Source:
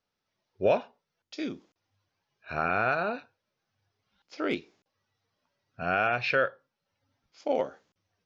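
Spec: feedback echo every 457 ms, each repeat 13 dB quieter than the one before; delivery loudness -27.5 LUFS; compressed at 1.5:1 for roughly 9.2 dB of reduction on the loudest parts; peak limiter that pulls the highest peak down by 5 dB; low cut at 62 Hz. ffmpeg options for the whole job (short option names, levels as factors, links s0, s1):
-af "highpass=62,acompressor=threshold=0.00562:ratio=1.5,alimiter=level_in=1.33:limit=0.0631:level=0:latency=1,volume=0.75,aecho=1:1:457|914|1371:0.224|0.0493|0.0108,volume=4.73"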